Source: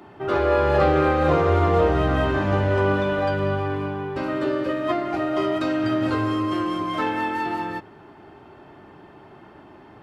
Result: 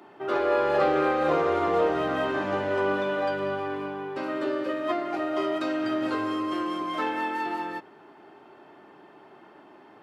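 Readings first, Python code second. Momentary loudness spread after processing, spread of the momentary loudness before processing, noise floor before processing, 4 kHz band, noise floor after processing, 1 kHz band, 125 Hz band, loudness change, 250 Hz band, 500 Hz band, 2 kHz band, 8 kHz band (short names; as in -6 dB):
8 LU, 8 LU, -47 dBFS, -3.5 dB, -52 dBFS, -3.5 dB, -18.0 dB, -4.5 dB, -5.5 dB, -4.0 dB, -3.5 dB, n/a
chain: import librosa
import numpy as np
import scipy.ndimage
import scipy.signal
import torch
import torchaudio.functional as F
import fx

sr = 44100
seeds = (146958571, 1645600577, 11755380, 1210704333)

y = scipy.signal.sosfilt(scipy.signal.butter(2, 260.0, 'highpass', fs=sr, output='sos'), x)
y = y * 10.0 ** (-3.5 / 20.0)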